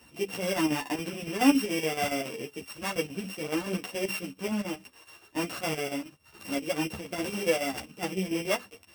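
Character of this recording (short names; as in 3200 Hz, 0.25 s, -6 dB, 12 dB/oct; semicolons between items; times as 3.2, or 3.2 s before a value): a buzz of ramps at a fixed pitch in blocks of 16 samples; chopped level 7.1 Hz, depth 60%, duty 70%; a shimmering, thickened sound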